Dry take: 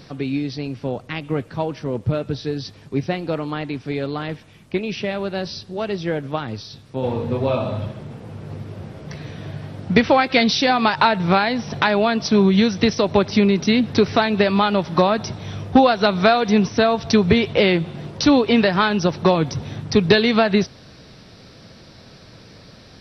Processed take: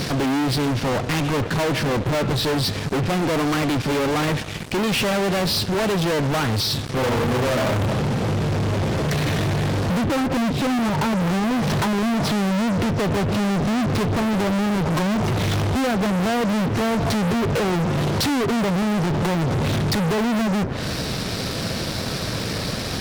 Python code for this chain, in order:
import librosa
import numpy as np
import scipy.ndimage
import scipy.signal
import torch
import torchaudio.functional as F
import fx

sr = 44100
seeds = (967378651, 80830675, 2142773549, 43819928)

y = fx.env_lowpass_down(x, sr, base_hz=360.0, full_db=-13.5)
y = fx.fuzz(y, sr, gain_db=43.0, gate_db=-50.0)
y = F.gain(torch.from_numpy(y), -6.5).numpy()